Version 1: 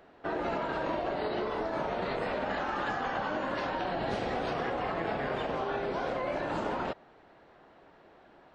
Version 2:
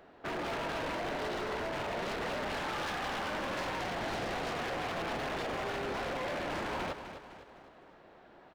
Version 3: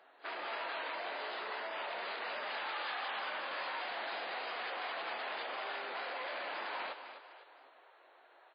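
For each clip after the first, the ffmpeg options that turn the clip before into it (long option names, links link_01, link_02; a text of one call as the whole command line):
ffmpeg -i in.wav -af "aeval=exprs='0.0266*(abs(mod(val(0)/0.0266+3,4)-2)-1)':channel_layout=same,aecho=1:1:254|508|762|1016|1270:0.316|0.145|0.0669|0.0308|0.0142" out.wav
ffmpeg -i in.wav -af "highpass=710,volume=-1.5dB" -ar 11025 -c:a libmp3lame -b:a 16k out.mp3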